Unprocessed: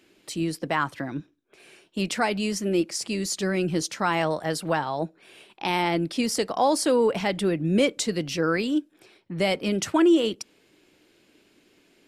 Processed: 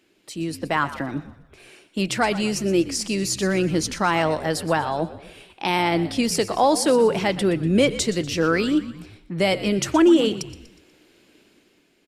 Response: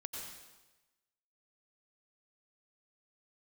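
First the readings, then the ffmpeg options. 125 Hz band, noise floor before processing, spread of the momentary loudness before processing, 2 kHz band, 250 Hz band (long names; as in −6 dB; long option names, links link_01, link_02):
+4.0 dB, −62 dBFS, 11 LU, +3.5 dB, +3.5 dB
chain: -filter_complex "[0:a]dynaudnorm=framelen=100:gausssize=11:maxgain=7dB,asplit=5[link_01][link_02][link_03][link_04][link_05];[link_02]adelay=121,afreqshift=-67,volume=-15dB[link_06];[link_03]adelay=242,afreqshift=-134,volume=-21.7dB[link_07];[link_04]adelay=363,afreqshift=-201,volume=-28.5dB[link_08];[link_05]adelay=484,afreqshift=-268,volume=-35.2dB[link_09];[link_01][link_06][link_07][link_08][link_09]amix=inputs=5:normalize=0,asplit=2[link_10][link_11];[1:a]atrim=start_sample=2205[link_12];[link_11][link_12]afir=irnorm=-1:irlink=0,volume=-19dB[link_13];[link_10][link_13]amix=inputs=2:normalize=0,volume=-3.5dB"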